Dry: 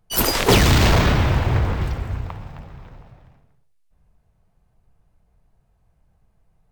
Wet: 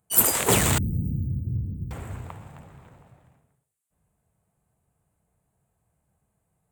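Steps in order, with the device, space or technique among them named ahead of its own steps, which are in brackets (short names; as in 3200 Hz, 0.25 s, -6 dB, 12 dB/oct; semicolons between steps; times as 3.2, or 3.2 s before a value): 0.78–1.91 inverse Chebyshev band-stop 1300–8800 Hz, stop band 80 dB; dynamic EQ 310 Hz, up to -3 dB, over -31 dBFS, Q 1.8; budget condenser microphone (HPF 93 Hz 12 dB/oct; resonant high shelf 6500 Hz +7.5 dB, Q 3); gain -5.5 dB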